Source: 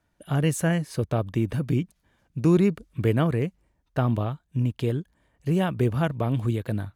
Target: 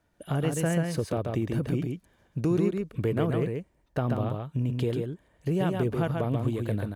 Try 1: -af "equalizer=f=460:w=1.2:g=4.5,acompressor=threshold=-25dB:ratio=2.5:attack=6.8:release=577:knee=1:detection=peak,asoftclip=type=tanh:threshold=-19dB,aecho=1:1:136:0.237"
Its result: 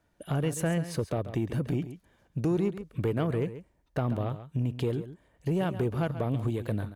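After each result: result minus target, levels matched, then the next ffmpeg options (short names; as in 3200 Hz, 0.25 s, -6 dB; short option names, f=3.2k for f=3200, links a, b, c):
soft clip: distortion +14 dB; echo-to-direct -8.5 dB
-af "equalizer=f=460:w=1.2:g=4.5,acompressor=threshold=-25dB:ratio=2.5:attack=6.8:release=577:knee=1:detection=peak,asoftclip=type=tanh:threshold=-11dB,aecho=1:1:136:0.237"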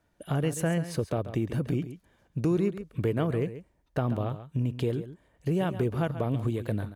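echo-to-direct -8.5 dB
-af "equalizer=f=460:w=1.2:g=4.5,acompressor=threshold=-25dB:ratio=2.5:attack=6.8:release=577:knee=1:detection=peak,asoftclip=type=tanh:threshold=-11dB,aecho=1:1:136:0.631"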